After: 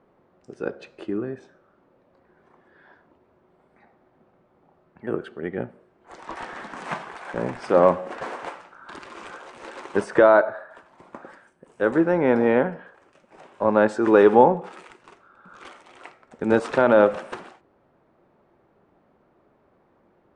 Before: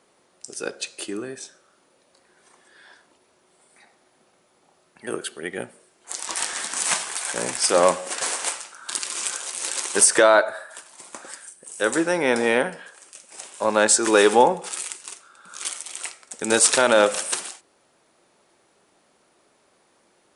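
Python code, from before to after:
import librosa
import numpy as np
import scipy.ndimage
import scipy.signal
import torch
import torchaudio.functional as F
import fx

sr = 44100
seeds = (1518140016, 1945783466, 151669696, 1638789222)

y = scipy.signal.sosfilt(scipy.signal.butter(2, 1400.0, 'lowpass', fs=sr, output='sos'), x)
y = fx.low_shelf(y, sr, hz=210.0, db=11.5)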